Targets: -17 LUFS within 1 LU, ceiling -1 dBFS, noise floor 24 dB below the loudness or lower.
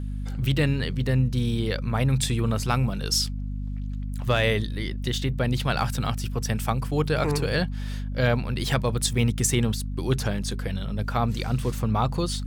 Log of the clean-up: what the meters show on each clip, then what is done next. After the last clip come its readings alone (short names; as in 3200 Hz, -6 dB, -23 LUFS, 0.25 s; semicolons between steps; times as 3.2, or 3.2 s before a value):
hum 50 Hz; harmonics up to 250 Hz; hum level -28 dBFS; loudness -26.0 LUFS; peak -10.0 dBFS; loudness target -17.0 LUFS
-> notches 50/100/150/200/250 Hz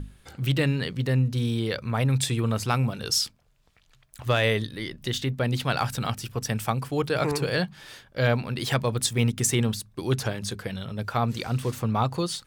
hum none; loudness -26.5 LUFS; peak -11.0 dBFS; loudness target -17.0 LUFS
-> gain +9.5 dB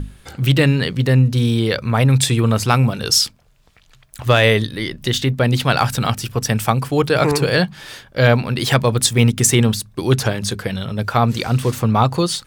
loudness -17.0 LUFS; peak -1.5 dBFS; noise floor -51 dBFS